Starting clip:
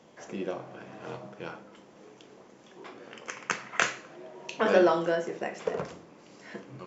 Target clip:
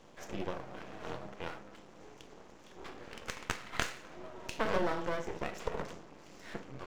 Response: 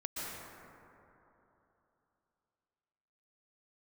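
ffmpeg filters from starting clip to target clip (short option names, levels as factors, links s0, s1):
-af "acompressor=threshold=0.02:ratio=2,aeval=exprs='max(val(0),0)':c=same,volume=1.33"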